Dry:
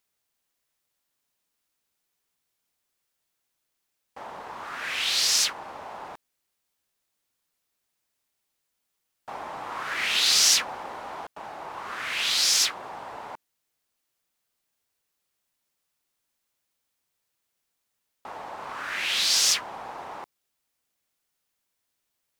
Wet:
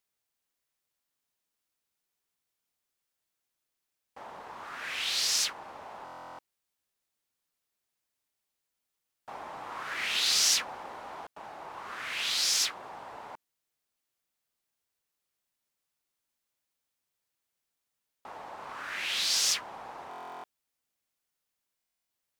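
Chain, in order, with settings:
buffer that repeats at 0:06.04/0:20.09/0:21.75, samples 1,024, times 14
level −5.5 dB

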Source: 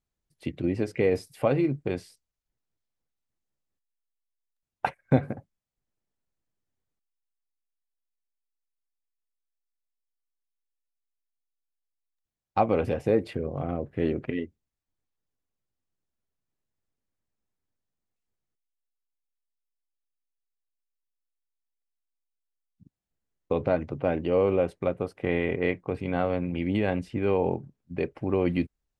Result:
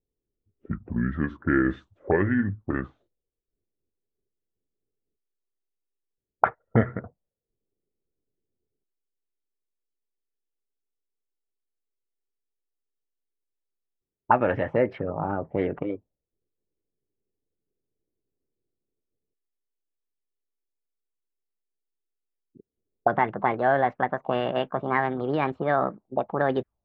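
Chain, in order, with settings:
gliding playback speed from 65% → 151%
envelope-controlled low-pass 410–1,800 Hz up, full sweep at −23 dBFS

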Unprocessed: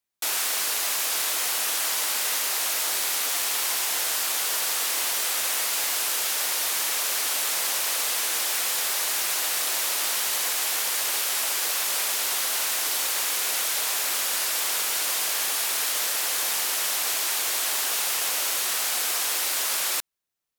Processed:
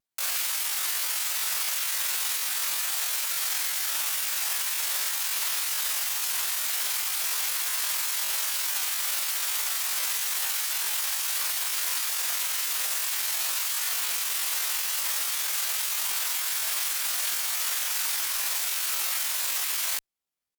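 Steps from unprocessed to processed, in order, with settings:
tape wow and flutter 140 cents
pitch shifter +11 semitones
harmonic generator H 5 −31 dB, 6 −41 dB, 7 −32 dB, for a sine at −12 dBFS

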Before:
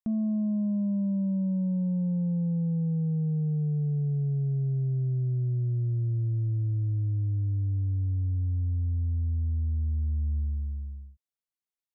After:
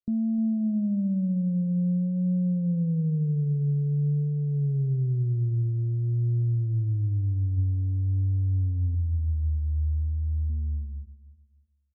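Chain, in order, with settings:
0:08.96–0:10.50: expanding power law on the bin magnitudes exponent 1.5
Butterworth low-pass 560 Hz 36 dB per octave
0:06.41–0:07.58: dynamic equaliser 120 Hz, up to +3 dB, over −44 dBFS, Q 4
brickwall limiter −26 dBFS, peak gain reduction 4 dB
pitch vibrato 0.5 Hz 89 cents
repeating echo 304 ms, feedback 27%, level −16 dB
level +3.5 dB
AAC 16 kbit/s 16,000 Hz

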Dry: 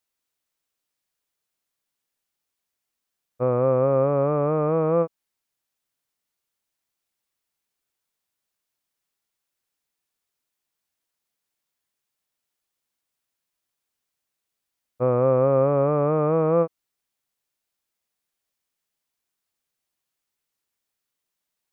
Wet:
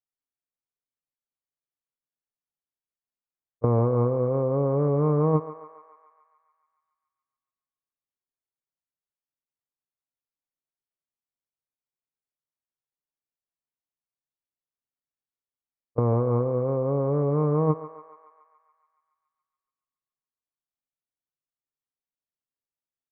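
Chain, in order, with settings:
noise gate with hold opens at −14 dBFS
low-pass filter 1,400 Hz 12 dB per octave
low-shelf EQ 290 Hz +5 dB
comb filter 7 ms, depth 44%
compressor whose output falls as the input rises −23 dBFS, ratio −1
speed change −6%
feedback echo with a high-pass in the loop 141 ms, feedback 76%, high-pass 670 Hz, level −10 dB

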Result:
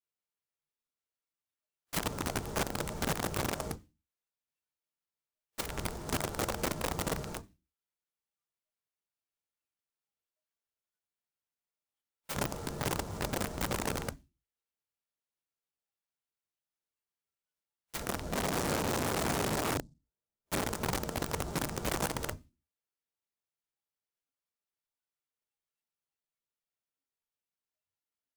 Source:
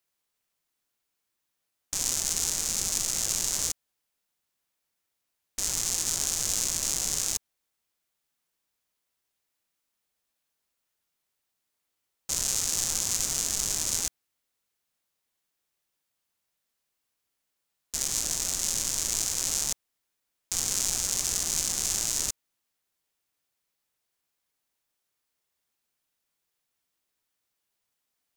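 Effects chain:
convolution reverb, pre-delay 6 ms, DRR −8.5 dB
noise reduction from a noise print of the clip's start 17 dB
0:18.32–0:20.64: tilt shelving filter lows +9.5 dB, about 1,300 Hz
treble cut that deepens with the level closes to 1,000 Hz, closed at −17 dBFS
dynamic equaliser 170 Hz, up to +4 dB, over −42 dBFS, Q 3.4
wrap-around overflow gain 20 dB
high-pass filter 87 Hz 6 dB per octave
short delay modulated by noise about 5,800 Hz, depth 0.055 ms
level −6.5 dB

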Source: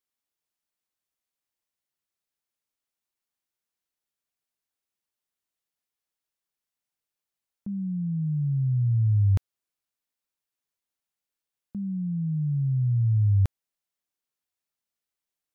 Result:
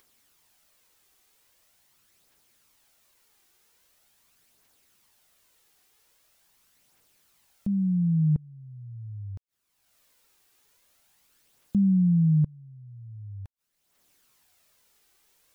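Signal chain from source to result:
gate with flip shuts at −23 dBFS, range −28 dB
upward compression, threshold −60 dBFS
phase shifter 0.43 Hz, delay 2.7 ms, feedback 36%
level +7.5 dB

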